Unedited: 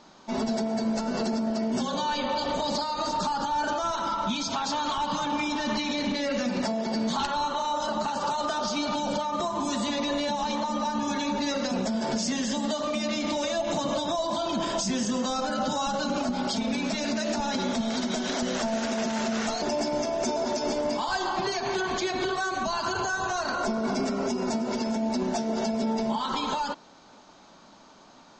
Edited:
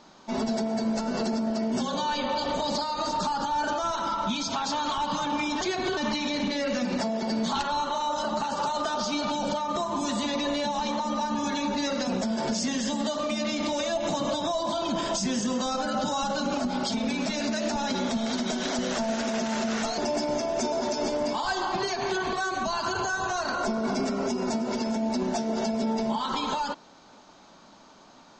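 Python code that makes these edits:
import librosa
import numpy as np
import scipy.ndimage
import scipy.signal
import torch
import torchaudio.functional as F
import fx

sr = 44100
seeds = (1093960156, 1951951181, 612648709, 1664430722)

y = fx.edit(x, sr, fx.move(start_s=21.97, length_s=0.36, to_s=5.61), tone=tone)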